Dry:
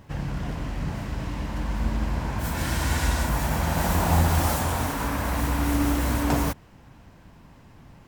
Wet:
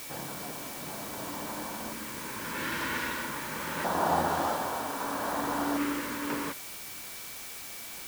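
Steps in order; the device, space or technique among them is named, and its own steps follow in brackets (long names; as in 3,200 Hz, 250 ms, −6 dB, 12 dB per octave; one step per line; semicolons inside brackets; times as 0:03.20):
shortwave radio (band-pass filter 350–2,900 Hz; amplitude tremolo 0.72 Hz, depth 39%; auto-filter notch square 0.26 Hz 720–2,300 Hz; steady tone 2,300 Hz −53 dBFS; white noise bed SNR 8 dB)
level +1 dB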